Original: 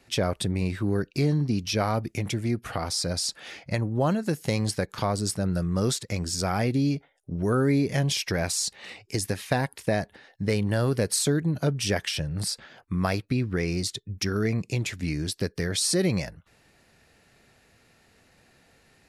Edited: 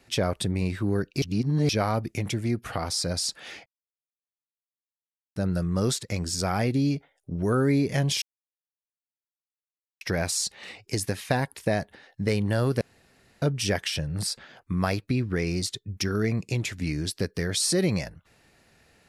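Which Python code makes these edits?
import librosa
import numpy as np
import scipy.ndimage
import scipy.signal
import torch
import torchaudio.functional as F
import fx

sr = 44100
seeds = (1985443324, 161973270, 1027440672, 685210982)

y = fx.edit(x, sr, fx.reverse_span(start_s=1.22, length_s=0.47),
    fx.silence(start_s=3.66, length_s=1.7),
    fx.insert_silence(at_s=8.22, length_s=1.79),
    fx.room_tone_fill(start_s=11.02, length_s=0.61), tone=tone)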